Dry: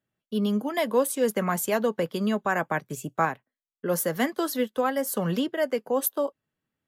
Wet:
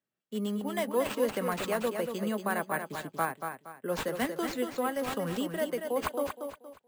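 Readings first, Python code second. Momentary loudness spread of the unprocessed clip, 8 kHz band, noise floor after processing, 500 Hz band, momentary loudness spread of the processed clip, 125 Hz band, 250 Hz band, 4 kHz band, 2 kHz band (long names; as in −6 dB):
6 LU, −9.5 dB, −72 dBFS, −5.0 dB, 7 LU, −7.5 dB, −6.0 dB, −3.5 dB, −4.5 dB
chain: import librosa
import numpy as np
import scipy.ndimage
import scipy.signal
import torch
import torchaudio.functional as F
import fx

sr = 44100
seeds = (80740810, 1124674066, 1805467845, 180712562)

y = scipy.signal.sosfilt(scipy.signal.butter(2, 170.0, 'highpass', fs=sr, output='sos'), x)
y = fx.echo_feedback(y, sr, ms=234, feedback_pct=32, wet_db=-6.5)
y = np.repeat(y[::4], 4)[:len(y)]
y = y * 10.0 ** (-6.0 / 20.0)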